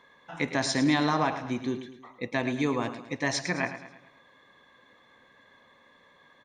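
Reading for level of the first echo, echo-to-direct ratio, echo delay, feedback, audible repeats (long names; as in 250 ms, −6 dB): −12.0 dB, −11.0 dB, 108 ms, 47%, 4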